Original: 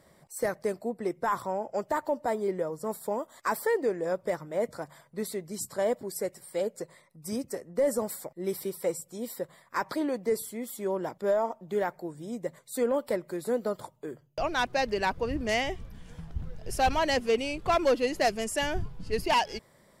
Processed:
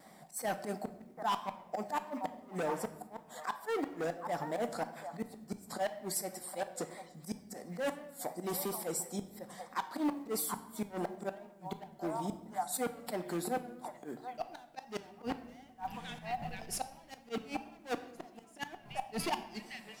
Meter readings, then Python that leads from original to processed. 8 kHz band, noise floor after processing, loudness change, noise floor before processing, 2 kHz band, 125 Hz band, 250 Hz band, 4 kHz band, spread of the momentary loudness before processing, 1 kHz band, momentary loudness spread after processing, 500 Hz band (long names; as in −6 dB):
−2.0 dB, −58 dBFS, −8.5 dB, −62 dBFS, −10.5 dB, −6.0 dB, −6.0 dB, −9.0 dB, 12 LU, −7.0 dB, 10 LU, −11.5 dB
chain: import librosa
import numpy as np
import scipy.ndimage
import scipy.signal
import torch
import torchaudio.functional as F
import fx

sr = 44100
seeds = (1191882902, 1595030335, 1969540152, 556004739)

y = fx.echo_stepped(x, sr, ms=749, hz=1000.0, octaves=1.4, feedback_pct=70, wet_db=-11.5)
y = fx.auto_swell(y, sr, attack_ms=102.0)
y = np.clip(y, -10.0 ** (-31.5 / 20.0), 10.0 ** (-31.5 / 20.0))
y = fx.low_shelf(y, sr, hz=170.0, db=-12.0)
y = fx.small_body(y, sr, hz=(220.0, 740.0), ring_ms=40, db=15)
y = fx.gate_flip(y, sr, shuts_db=-24.0, range_db=-31)
y = fx.room_shoebox(y, sr, seeds[0], volume_m3=400.0, walls='mixed', distance_m=0.46)
y = fx.quant_companded(y, sr, bits=8)
y = fx.vibrato(y, sr, rate_hz=2.9, depth_cents=43.0)
y = fx.tilt_shelf(y, sr, db=-3.0, hz=820.0)